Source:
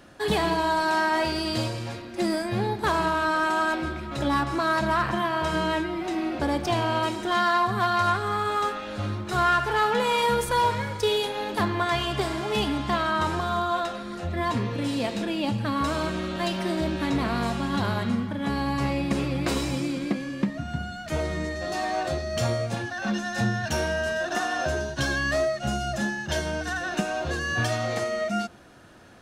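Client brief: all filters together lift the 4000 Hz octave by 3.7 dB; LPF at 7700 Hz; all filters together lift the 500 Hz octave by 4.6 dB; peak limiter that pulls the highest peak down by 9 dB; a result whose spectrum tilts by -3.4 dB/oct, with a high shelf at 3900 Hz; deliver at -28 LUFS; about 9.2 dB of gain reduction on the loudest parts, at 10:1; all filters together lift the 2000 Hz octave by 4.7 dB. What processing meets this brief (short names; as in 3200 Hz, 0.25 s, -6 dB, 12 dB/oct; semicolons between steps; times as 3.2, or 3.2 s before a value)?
LPF 7700 Hz; bell 500 Hz +6 dB; bell 2000 Hz +6 dB; high shelf 3900 Hz -6.5 dB; bell 4000 Hz +6.5 dB; compressor 10:1, threshold -24 dBFS; gain +2 dB; limiter -19.5 dBFS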